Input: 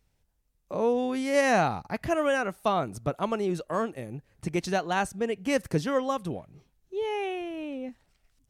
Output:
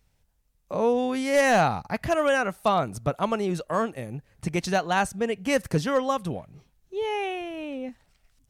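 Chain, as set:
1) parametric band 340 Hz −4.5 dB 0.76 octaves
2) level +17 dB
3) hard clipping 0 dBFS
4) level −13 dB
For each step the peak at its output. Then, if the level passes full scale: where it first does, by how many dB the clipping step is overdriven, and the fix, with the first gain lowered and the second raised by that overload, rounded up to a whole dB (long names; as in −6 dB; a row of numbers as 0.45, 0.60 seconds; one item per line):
−12.0, +5.0, 0.0, −13.0 dBFS
step 2, 5.0 dB
step 2 +12 dB, step 4 −8 dB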